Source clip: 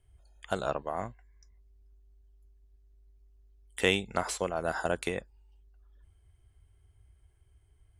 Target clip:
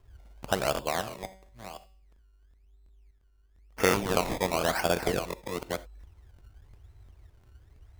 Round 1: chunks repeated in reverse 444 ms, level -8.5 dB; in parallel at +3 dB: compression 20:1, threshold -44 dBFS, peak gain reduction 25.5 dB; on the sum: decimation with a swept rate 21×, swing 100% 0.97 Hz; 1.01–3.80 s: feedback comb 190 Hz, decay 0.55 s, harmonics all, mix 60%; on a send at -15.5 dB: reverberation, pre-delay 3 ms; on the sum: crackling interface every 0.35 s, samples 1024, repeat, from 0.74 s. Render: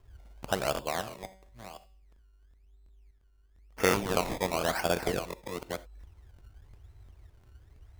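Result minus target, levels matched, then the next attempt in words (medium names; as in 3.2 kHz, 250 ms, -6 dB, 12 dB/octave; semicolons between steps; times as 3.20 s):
compression: peak gain reduction +9 dB
chunks repeated in reverse 444 ms, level -8.5 dB; in parallel at +3 dB: compression 20:1, threshold -34.5 dBFS, peak gain reduction 16.5 dB; on the sum: decimation with a swept rate 21×, swing 100% 0.97 Hz; 1.01–3.80 s: feedback comb 190 Hz, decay 0.55 s, harmonics all, mix 60%; on a send at -15.5 dB: reverberation, pre-delay 3 ms; on the sum: crackling interface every 0.35 s, samples 1024, repeat, from 0.74 s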